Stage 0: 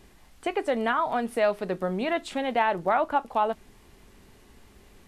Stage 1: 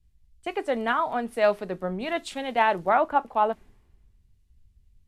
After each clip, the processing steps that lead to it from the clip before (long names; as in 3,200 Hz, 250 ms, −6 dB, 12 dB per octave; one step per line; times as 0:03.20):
multiband upward and downward expander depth 100%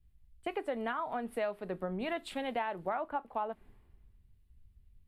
parametric band 6,100 Hz −14 dB 0.78 octaves
downward compressor 6 to 1, threshold −30 dBFS, peak gain reduction 13.5 dB
level −2 dB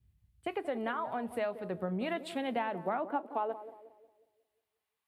high-pass filter sweep 89 Hz → 950 Hz, 0:01.59–0:04.99
feedback echo with a band-pass in the loop 181 ms, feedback 47%, band-pass 440 Hz, level −11.5 dB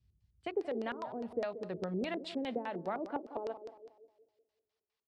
auto-filter low-pass square 4.9 Hz 420–5,100 Hz
level −3.5 dB